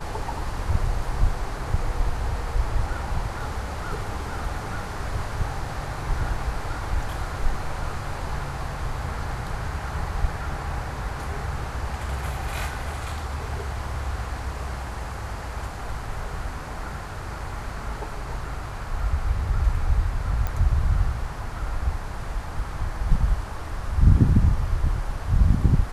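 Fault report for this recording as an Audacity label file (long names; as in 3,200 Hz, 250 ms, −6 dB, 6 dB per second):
20.470000	20.470000	click −15 dBFS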